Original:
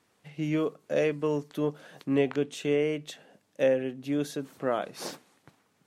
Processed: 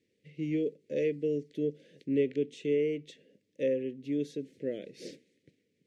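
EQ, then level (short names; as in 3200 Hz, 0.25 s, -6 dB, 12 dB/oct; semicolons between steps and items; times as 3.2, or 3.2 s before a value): elliptic band-stop 500–2000 Hz, stop band 60 dB; air absorption 73 m; bell 370 Hz +5.5 dB 1.8 oct; -6.5 dB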